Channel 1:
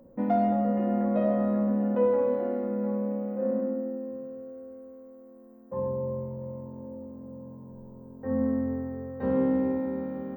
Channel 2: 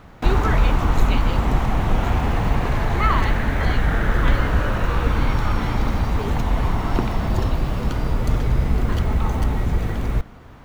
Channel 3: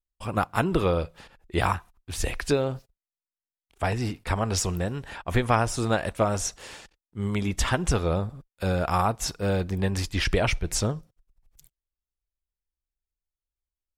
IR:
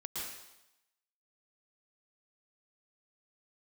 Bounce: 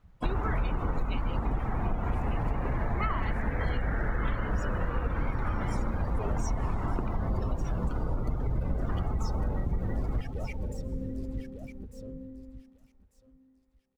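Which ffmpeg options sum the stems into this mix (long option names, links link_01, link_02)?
-filter_complex "[0:a]adelay=1500,volume=-8.5dB,asplit=2[link_01][link_02];[link_02]volume=-11dB[link_03];[1:a]volume=-5.5dB,asplit=2[link_04][link_05];[link_05]volume=-10.5dB[link_06];[2:a]alimiter=limit=-16.5dB:level=0:latency=1,asoftclip=type=tanh:threshold=-32dB,volume=0dB,asplit=3[link_07][link_08][link_09];[link_08]volume=-19.5dB[link_10];[link_09]volume=-11dB[link_11];[link_01][link_07]amix=inputs=2:normalize=0,alimiter=level_in=11dB:limit=-24dB:level=0:latency=1,volume=-11dB,volume=0dB[link_12];[3:a]atrim=start_sample=2205[link_13];[link_10][link_13]afir=irnorm=-1:irlink=0[link_14];[link_03][link_06][link_11]amix=inputs=3:normalize=0,aecho=0:1:1196|2392|3588|4784:1|0.28|0.0784|0.022[link_15];[link_04][link_12][link_14][link_15]amix=inputs=4:normalize=0,afftdn=noise_reduction=19:noise_floor=-36,highshelf=frequency=4800:gain=5.5,acompressor=threshold=-25dB:ratio=6"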